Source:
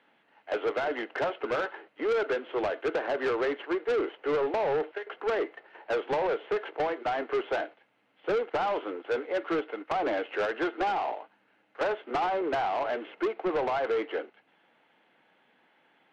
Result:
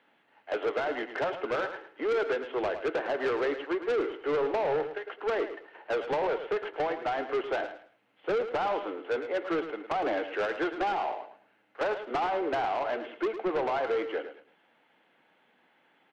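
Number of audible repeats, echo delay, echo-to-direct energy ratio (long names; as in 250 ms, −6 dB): 2, 108 ms, −10.0 dB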